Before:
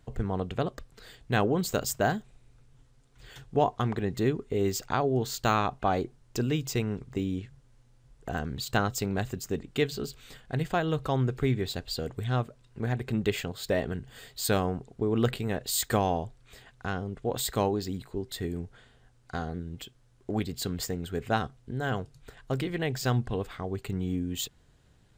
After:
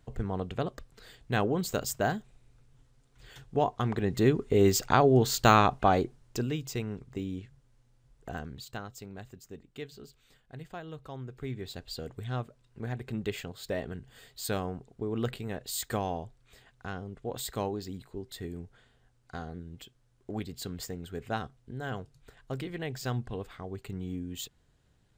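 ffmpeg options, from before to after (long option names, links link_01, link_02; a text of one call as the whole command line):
ffmpeg -i in.wav -af "volume=13.5dB,afade=type=in:start_time=3.75:duration=0.85:silence=0.421697,afade=type=out:start_time=5.6:duration=0.96:silence=0.316228,afade=type=out:start_time=8.29:duration=0.51:silence=0.334965,afade=type=in:start_time=11.27:duration=0.64:silence=0.375837" out.wav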